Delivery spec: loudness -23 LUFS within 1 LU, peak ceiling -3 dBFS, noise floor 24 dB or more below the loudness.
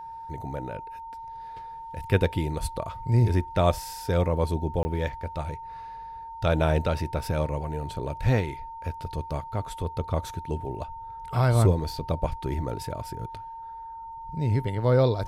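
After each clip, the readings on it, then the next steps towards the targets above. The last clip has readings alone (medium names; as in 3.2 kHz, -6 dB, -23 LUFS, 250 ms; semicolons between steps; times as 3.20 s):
dropouts 1; longest dropout 20 ms; steady tone 910 Hz; tone level -37 dBFS; loudness -28.0 LUFS; peak level -8.5 dBFS; loudness target -23.0 LUFS
-> interpolate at 4.83 s, 20 ms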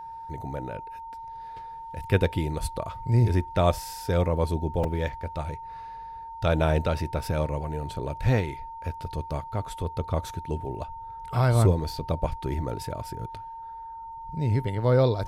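dropouts 0; steady tone 910 Hz; tone level -37 dBFS
-> band-stop 910 Hz, Q 30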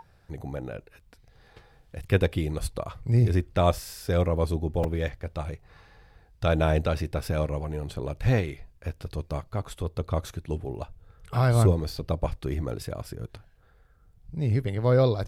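steady tone not found; loudness -27.5 LUFS; peak level -9.0 dBFS; loudness target -23.0 LUFS
-> trim +4.5 dB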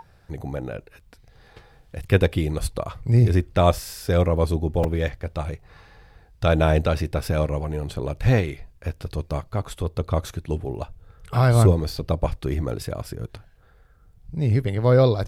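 loudness -23.0 LUFS; peak level -4.5 dBFS; noise floor -54 dBFS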